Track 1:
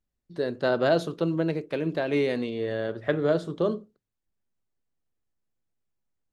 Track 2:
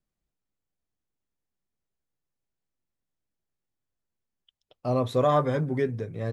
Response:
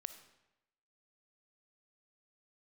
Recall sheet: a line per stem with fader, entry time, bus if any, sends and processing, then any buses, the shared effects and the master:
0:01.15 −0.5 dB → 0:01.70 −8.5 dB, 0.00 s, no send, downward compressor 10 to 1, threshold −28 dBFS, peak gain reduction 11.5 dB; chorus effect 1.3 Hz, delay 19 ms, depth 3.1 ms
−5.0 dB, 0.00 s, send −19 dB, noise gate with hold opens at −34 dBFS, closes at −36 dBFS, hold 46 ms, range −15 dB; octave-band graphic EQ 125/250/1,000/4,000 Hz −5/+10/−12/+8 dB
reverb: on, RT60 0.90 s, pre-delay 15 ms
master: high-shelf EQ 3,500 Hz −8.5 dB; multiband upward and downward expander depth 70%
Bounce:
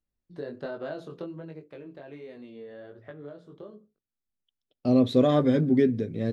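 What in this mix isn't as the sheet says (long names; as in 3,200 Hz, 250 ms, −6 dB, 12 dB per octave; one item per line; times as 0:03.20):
stem 2 −5.0 dB → +1.5 dB
master: missing multiband upward and downward expander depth 70%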